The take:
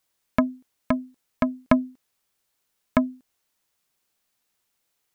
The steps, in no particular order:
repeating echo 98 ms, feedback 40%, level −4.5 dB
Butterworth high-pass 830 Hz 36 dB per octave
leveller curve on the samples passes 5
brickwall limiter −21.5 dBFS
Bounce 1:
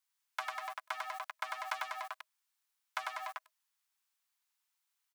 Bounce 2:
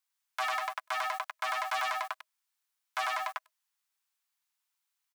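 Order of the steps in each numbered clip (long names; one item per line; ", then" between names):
repeating echo, then leveller curve on the samples, then brickwall limiter, then Butterworth high-pass
repeating echo, then leveller curve on the samples, then Butterworth high-pass, then brickwall limiter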